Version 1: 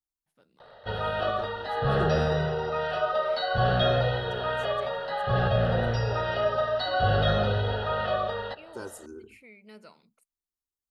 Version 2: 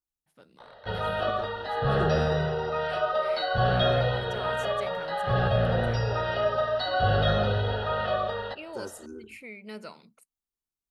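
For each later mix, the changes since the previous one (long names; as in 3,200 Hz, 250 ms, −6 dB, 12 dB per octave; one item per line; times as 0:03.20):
first voice +8.5 dB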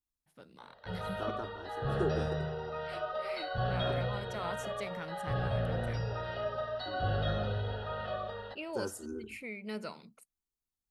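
background −10.5 dB
master: add low-shelf EQ 230 Hz +4 dB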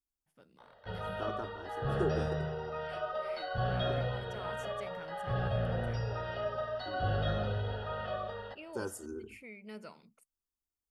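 first voice −7.0 dB
master: add notch filter 4,000 Hz, Q 7.9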